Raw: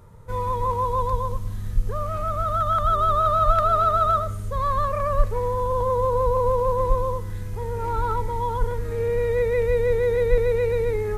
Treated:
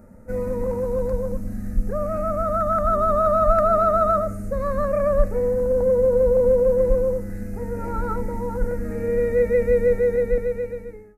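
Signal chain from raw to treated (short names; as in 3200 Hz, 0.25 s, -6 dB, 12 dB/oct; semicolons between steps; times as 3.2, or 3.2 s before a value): ending faded out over 1.33 s; fixed phaser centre 680 Hz, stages 8; small resonant body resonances 230/460 Hz, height 18 dB, ringing for 40 ms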